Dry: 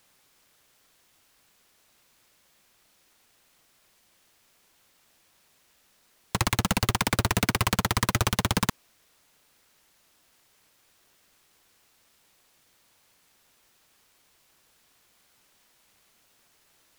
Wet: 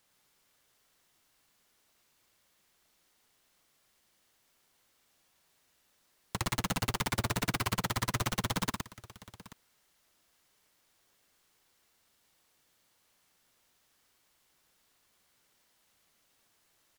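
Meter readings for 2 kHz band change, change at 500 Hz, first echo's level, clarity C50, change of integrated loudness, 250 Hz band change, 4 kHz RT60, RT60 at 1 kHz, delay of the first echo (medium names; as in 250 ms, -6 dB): -7.5 dB, -7.0 dB, -16.0 dB, no reverb, -7.5 dB, -7.5 dB, no reverb, no reverb, 66 ms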